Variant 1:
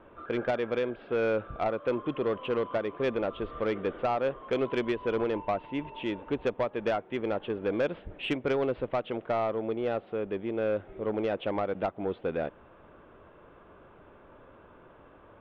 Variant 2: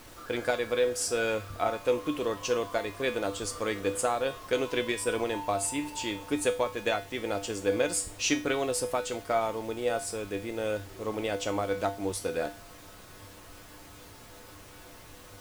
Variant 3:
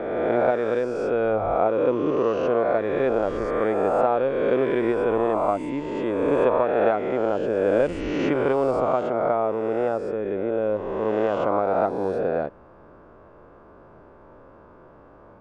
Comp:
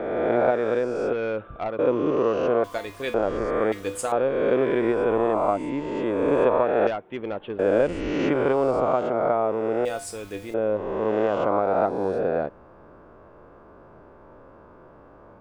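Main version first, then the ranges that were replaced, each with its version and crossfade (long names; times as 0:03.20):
3
0:01.13–0:01.79: punch in from 1
0:02.64–0:03.14: punch in from 2
0:03.72–0:04.12: punch in from 2
0:06.87–0:07.59: punch in from 1
0:09.85–0:10.54: punch in from 2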